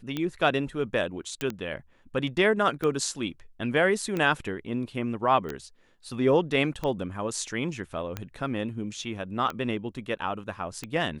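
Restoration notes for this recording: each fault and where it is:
scratch tick 45 rpm −17 dBFS
0:01.41: click −16 dBFS
0:05.49: click

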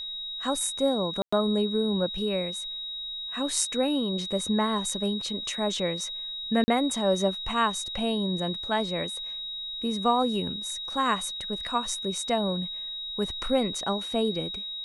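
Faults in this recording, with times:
whistle 3,800 Hz −33 dBFS
0:01.22–0:01.32: drop-out 105 ms
0:06.64–0:06.68: drop-out 40 ms

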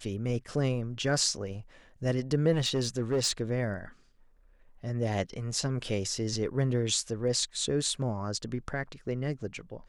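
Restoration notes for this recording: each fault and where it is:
0:02.52–0:03.41: clipping −23 dBFS

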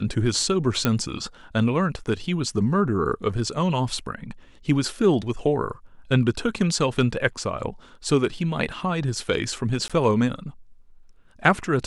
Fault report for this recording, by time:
0:00.85: click −6 dBFS
0:09.88–0:09.90: drop-out 16 ms

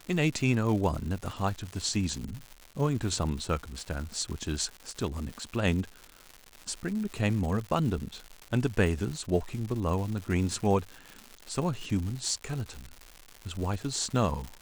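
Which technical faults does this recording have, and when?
surface crackle 230 per second −35 dBFS

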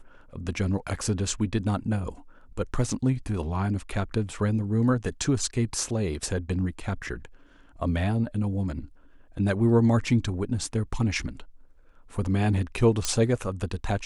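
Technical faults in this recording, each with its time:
0:13.05: click −12 dBFS

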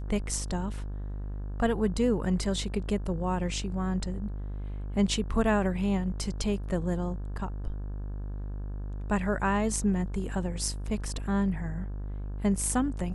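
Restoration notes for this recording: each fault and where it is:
mains buzz 50 Hz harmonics 35 −35 dBFS

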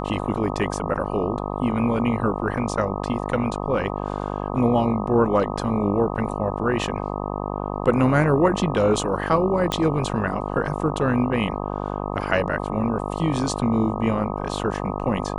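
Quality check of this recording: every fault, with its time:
mains buzz 50 Hz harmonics 25 −28 dBFS
0:09.72: click −9 dBFS

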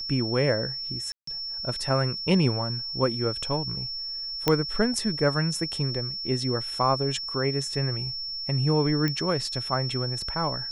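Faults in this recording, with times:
whistle 5,400 Hz −31 dBFS
0:01.12–0:01.27: drop-out 154 ms
0:04.48: click −7 dBFS
0:09.08: click −14 dBFS

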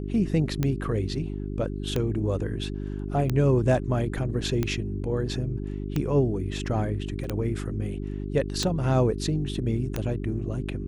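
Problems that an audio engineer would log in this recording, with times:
mains hum 50 Hz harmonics 8 −32 dBFS
scratch tick 45 rpm −13 dBFS
0:07.24: drop-out 2.9 ms

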